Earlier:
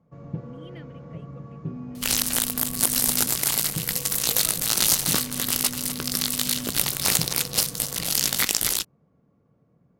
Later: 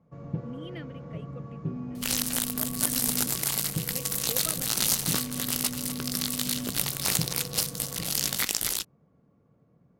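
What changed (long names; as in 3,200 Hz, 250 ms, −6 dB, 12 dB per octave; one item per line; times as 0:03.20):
speech +4.0 dB
second sound −5.0 dB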